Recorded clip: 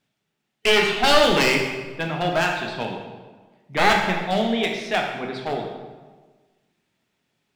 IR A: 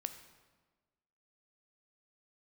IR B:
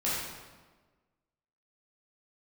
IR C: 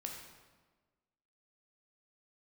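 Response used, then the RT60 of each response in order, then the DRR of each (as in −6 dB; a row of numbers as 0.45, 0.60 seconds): C; 1.4, 1.4, 1.4 seconds; 8.5, −9.0, 0.5 decibels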